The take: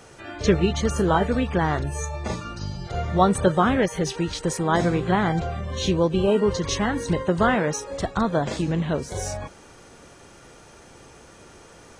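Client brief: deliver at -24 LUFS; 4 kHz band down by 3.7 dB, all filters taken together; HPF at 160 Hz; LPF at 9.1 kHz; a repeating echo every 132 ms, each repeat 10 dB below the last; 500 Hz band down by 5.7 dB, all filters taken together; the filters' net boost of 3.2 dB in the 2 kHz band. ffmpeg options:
-af "highpass=160,lowpass=9100,equalizer=f=500:t=o:g=-7.5,equalizer=f=2000:t=o:g=6,equalizer=f=4000:t=o:g=-7,aecho=1:1:132|264|396|528:0.316|0.101|0.0324|0.0104,volume=1.19"

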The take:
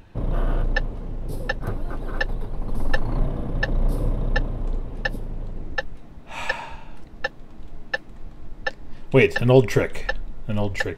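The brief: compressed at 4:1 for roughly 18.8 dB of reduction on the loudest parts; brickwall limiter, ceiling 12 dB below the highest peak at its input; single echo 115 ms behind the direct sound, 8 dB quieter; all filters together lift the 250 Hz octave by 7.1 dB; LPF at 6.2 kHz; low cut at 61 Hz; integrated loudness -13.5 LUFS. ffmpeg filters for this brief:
-af "highpass=61,lowpass=6200,equalizer=f=250:t=o:g=8.5,acompressor=threshold=0.0355:ratio=4,alimiter=level_in=1.58:limit=0.0631:level=0:latency=1,volume=0.631,aecho=1:1:115:0.398,volume=16.8"

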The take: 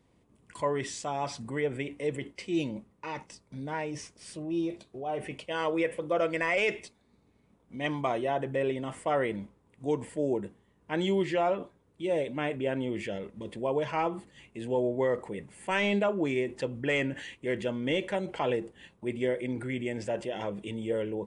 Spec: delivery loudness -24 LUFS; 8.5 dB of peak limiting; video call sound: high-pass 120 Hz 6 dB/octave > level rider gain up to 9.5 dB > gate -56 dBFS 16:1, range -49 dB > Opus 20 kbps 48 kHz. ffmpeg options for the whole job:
-af "alimiter=level_in=1.26:limit=0.0631:level=0:latency=1,volume=0.794,highpass=f=120:p=1,dynaudnorm=m=2.99,agate=range=0.00355:threshold=0.00158:ratio=16,volume=2.66" -ar 48000 -c:a libopus -b:a 20k

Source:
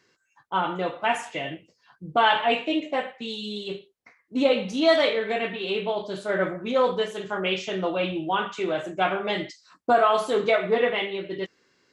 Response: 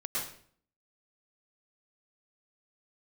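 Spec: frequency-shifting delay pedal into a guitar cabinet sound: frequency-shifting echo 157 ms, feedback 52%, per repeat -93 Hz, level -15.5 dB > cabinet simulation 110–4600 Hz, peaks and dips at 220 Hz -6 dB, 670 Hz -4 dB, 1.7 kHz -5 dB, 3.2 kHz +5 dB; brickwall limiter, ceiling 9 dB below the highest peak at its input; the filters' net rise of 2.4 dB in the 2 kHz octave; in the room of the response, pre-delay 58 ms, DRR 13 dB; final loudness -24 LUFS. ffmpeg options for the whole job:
-filter_complex "[0:a]equalizer=f=2000:t=o:g=5,alimiter=limit=0.178:level=0:latency=1,asplit=2[s0][s1];[1:a]atrim=start_sample=2205,adelay=58[s2];[s1][s2]afir=irnorm=-1:irlink=0,volume=0.126[s3];[s0][s3]amix=inputs=2:normalize=0,asplit=6[s4][s5][s6][s7][s8][s9];[s5]adelay=157,afreqshift=-93,volume=0.168[s10];[s6]adelay=314,afreqshift=-186,volume=0.0871[s11];[s7]adelay=471,afreqshift=-279,volume=0.0452[s12];[s8]adelay=628,afreqshift=-372,volume=0.0237[s13];[s9]adelay=785,afreqshift=-465,volume=0.0123[s14];[s4][s10][s11][s12][s13][s14]amix=inputs=6:normalize=0,highpass=110,equalizer=f=220:t=q:w=4:g=-6,equalizer=f=670:t=q:w=4:g=-4,equalizer=f=1700:t=q:w=4:g=-5,equalizer=f=3200:t=q:w=4:g=5,lowpass=f=4600:w=0.5412,lowpass=f=4600:w=1.3066,volume=1.41"

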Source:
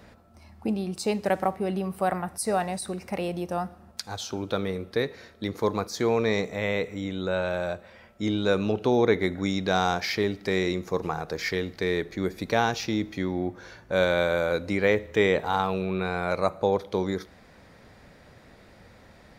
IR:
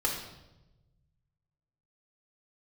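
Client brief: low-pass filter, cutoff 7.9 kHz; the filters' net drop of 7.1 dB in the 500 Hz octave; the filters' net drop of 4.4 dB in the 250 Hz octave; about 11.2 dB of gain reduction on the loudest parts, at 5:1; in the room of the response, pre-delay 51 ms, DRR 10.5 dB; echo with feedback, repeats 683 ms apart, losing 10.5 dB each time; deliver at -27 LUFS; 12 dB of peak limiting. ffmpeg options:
-filter_complex "[0:a]lowpass=7900,equalizer=f=250:t=o:g=-4,equalizer=f=500:t=o:g=-7.5,acompressor=threshold=0.02:ratio=5,alimiter=level_in=1.5:limit=0.0631:level=0:latency=1,volume=0.668,aecho=1:1:683|1366|2049:0.299|0.0896|0.0269,asplit=2[s0][s1];[1:a]atrim=start_sample=2205,adelay=51[s2];[s1][s2]afir=irnorm=-1:irlink=0,volume=0.126[s3];[s0][s3]amix=inputs=2:normalize=0,volume=4.47"

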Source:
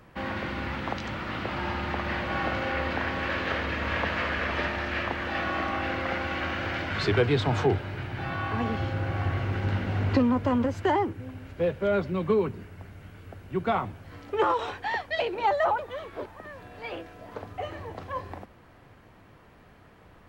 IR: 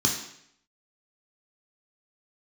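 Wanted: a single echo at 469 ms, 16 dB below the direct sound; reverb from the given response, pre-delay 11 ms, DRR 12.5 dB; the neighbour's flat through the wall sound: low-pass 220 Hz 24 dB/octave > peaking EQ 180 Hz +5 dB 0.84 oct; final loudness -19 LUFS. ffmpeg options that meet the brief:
-filter_complex "[0:a]aecho=1:1:469:0.158,asplit=2[s0][s1];[1:a]atrim=start_sample=2205,adelay=11[s2];[s1][s2]afir=irnorm=-1:irlink=0,volume=0.0708[s3];[s0][s3]amix=inputs=2:normalize=0,lowpass=f=220:w=0.5412,lowpass=f=220:w=1.3066,equalizer=f=180:t=o:w=0.84:g=5,volume=4.22"

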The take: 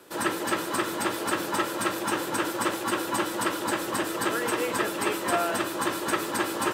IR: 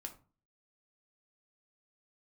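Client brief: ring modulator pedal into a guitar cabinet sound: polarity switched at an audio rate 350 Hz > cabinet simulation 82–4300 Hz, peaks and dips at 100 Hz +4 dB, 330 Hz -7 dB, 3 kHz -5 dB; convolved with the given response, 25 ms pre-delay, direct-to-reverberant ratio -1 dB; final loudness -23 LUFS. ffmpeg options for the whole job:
-filter_complex "[0:a]asplit=2[s0][s1];[1:a]atrim=start_sample=2205,adelay=25[s2];[s1][s2]afir=irnorm=-1:irlink=0,volume=1.78[s3];[s0][s3]amix=inputs=2:normalize=0,aeval=exprs='val(0)*sgn(sin(2*PI*350*n/s))':c=same,highpass=82,equalizer=f=100:t=q:w=4:g=4,equalizer=f=330:t=q:w=4:g=-7,equalizer=f=3000:t=q:w=4:g=-5,lowpass=f=4300:w=0.5412,lowpass=f=4300:w=1.3066,volume=1.33"

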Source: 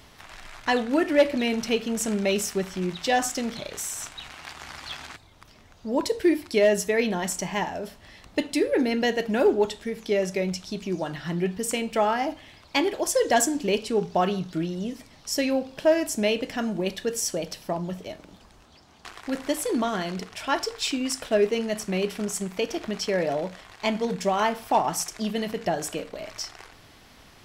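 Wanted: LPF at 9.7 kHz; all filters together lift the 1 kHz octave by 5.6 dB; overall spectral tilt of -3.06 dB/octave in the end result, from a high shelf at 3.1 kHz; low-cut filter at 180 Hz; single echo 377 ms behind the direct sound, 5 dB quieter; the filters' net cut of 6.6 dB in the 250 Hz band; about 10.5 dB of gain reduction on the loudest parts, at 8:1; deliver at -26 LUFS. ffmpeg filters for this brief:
-af "highpass=180,lowpass=9700,equalizer=f=250:t=o:g=-8,equalizer=f=1000:t=o:g=8.5,highshelf=f=3100:g=-3.5,acompressor=threshold=0.0794:ratio=8,aecho=1:1:377:0.562,volume=1.41"

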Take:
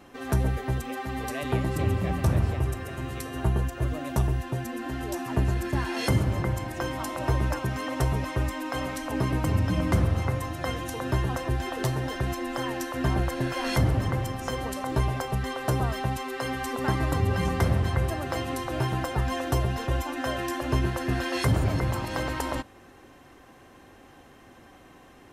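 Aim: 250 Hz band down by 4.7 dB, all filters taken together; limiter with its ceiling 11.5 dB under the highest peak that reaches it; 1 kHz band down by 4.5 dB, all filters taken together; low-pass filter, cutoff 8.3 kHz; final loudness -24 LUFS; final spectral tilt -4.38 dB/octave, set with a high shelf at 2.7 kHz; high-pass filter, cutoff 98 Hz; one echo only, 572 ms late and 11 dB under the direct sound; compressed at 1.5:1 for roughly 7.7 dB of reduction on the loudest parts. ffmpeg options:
-af "highpass=98,lowpass=8300,equalizer=f=250:t=o:g=-6,equalizer=f=1000:t=o:g=-6.5,highshelf=f=2700:g=7.5,acompressor=threshold=0.00631:ratio=1.5,alimiter=level_in=1.78:limit=0.0631:level=0:latency=1,volume=0.562,aecho=1:1:572:0.282,volume=5.31"

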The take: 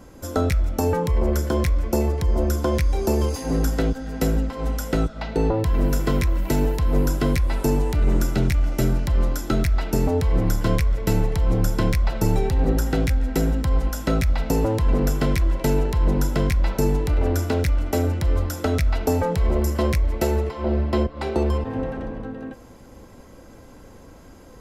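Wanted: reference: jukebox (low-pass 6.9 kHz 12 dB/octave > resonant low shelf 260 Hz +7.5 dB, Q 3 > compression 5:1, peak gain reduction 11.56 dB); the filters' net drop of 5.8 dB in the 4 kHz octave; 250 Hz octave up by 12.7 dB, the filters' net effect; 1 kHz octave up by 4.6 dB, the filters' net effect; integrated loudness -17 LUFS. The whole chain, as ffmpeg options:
-af "lowpass=6900,equalizer=f=250:t=o:g=5.5,lowshelf=f=260:t=q:w=3:g=7.5,equalizer=f=1000:t=o:g=6.5,equalizer=f=4000:t=o:g=-7.5,acompressor=threshold=0.158:ratio=5,volume=1.58"

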